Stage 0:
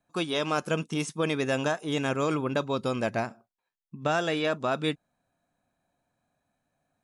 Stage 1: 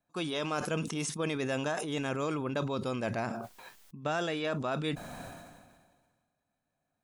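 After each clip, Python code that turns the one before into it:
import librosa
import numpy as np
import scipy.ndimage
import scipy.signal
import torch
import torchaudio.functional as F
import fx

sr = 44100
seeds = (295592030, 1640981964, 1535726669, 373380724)

y = fx.sustainer(x, sr, db_per_s=36.0)
y = F.gain(torch.from_numpy(y), -6.0).numpy()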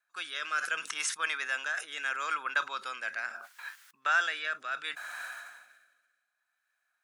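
y = fx.highpass_res(x, sr, hz=1500.0, q=3.7)
y = fx.rotary(y, sr, hz=0.7)
y = F.gain(torch.from_numpy(y), 4.0).numpy()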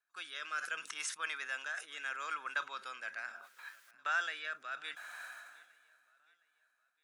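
y = fx.echo_feedback(x, sr, ms=712, feedback_pct=40, wet_db=-23)
y = F.gain(torch.from_numpy(y), -7.0).numpy()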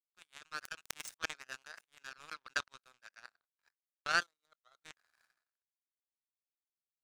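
y = fx.spec_box(x, sr, start_s=4.23, length_s=0.62, low_hz=1400.0, high_hz=3600.0, gain_db=-19)
y = fx.power_curve(y, sr, exponent=3.0)
y = F.gain(torch.from_numpy(y), 11.5).numpy()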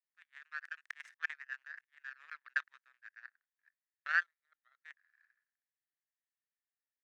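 y = fx.bandpass_q(x, sr, hz=1800.0, q=7.7)
y = F.gain(torch.from_numpy(y), 9.0).numpy()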